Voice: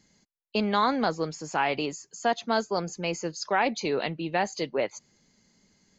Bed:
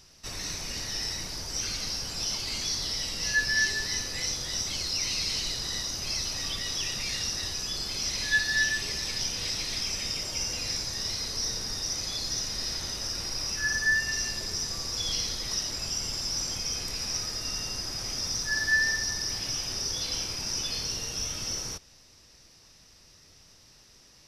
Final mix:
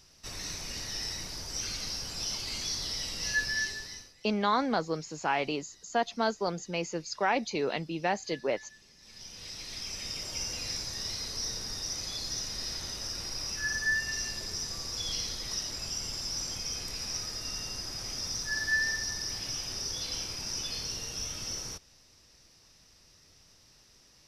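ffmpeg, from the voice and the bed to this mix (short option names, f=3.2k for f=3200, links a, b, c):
-filter_complex "[0:a]adelay=3700,volume=-3dB[a];[1:a]volume=19.5dB,afade=t=out:st=3.37:d=0.78:silence=0.0668344,afade=t=in:st=8.98:d=1.38:silence=0.0707946[b];[a][b]amix=inputs=2:normalize=0"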